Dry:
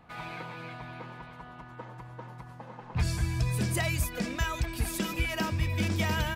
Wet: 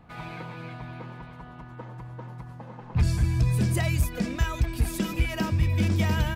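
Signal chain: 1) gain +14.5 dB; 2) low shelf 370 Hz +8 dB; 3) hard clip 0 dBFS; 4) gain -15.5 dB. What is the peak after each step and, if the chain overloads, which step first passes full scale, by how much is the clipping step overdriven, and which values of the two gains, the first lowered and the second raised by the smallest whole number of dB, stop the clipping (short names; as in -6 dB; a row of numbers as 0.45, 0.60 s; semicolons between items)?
-3.5, +3.5, 0.0, -15.5 dBFS; step 2, 3.5 dB; step 1 +10.5 dB, step 4 -11.5 dB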